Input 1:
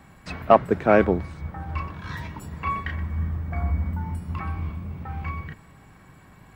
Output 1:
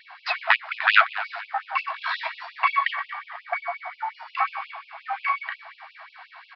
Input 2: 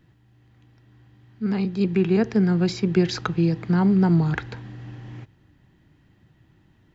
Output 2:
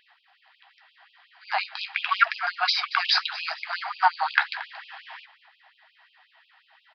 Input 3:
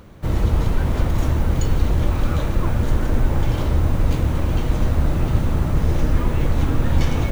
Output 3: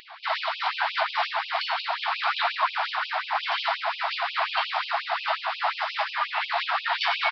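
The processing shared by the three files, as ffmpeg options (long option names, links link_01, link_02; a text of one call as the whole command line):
ffmpeg -i in.wav -filter_complex "[0:a]alimiter=limit=-9.5dB:level=0:latency=1:release=329,highpass=frequency=450:width_type=q:width=4.9,flanger=delay=5.7:depth=9.7:regen=-51:speed=0.82:shape=sinusoidal,aeval=exprs='0.422*sin(PI/2*2.51*val(0)/0.422)':channel_layout=same,asplit=4[link_01][link_02][link_03][link_04];[link_02]adelay=228,afreqshift=39,volume=-17.5dB[link_05];[link_03]adelay=456,afreqshift=78,volume=-25dB[link_06];[link_04]adelay=684,afreqshift=117,volume=-32.6dB[link_07];[link_01][link_05][link_06][link_07]amix=inputs=4:normalize=0,aresample=11025,aresample=44100,afftfilt=real='re*gte(b*sr/1024,630*pow(2500/630,0.5+0.5*sin(2*PI*5.6*pts/sr)))':imag='im*gte(b*sr/1024,630*pow(2500/630,0.5+0.5*sin(2*PI*5.6*pts/sr)))':win_size=1024:overlap=0.75,volume=4dB" out.wav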